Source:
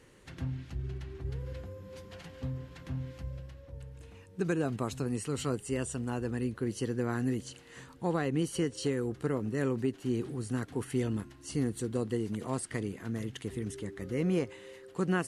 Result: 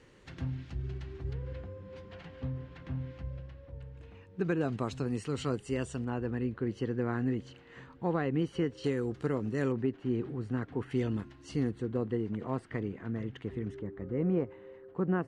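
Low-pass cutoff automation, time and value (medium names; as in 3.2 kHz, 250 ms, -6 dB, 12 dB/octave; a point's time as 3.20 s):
5.9 kHz
from 1.33 s 3.1 kHz
from 4.61 s 5.1 kHz
from 6.05 s 2.6 kHz
from 8.84 s 6.1 kHz
from 9.72 s 2.3 kHz
from 10.91 s 4.2 kHz
from 11.71 s 2.1 kHz
from 13.79 s 1.2 kHz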